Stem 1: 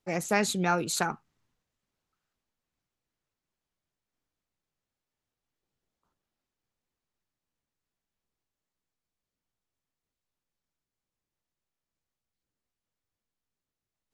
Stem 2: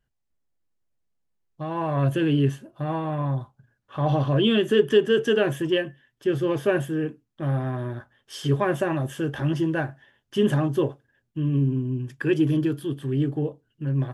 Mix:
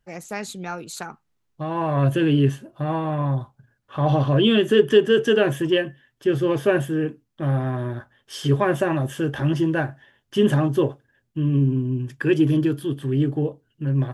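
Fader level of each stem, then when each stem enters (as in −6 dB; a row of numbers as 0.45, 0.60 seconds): −5.0, +3.0 decibels; 0.00, 0.00 seconds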